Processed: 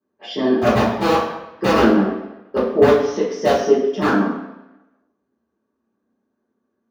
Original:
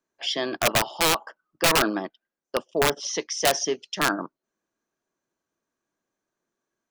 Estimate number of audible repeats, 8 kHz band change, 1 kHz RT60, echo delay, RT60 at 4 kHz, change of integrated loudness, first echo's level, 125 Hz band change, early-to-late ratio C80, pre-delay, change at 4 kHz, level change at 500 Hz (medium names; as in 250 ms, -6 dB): no echo, -11.5 dB, 1.0 s, no echo, 0.80 s, +6.5 dB, no echo, +10.0 dB, 6.0 dB, 3 ms, -5.0 dB, +11.0 dB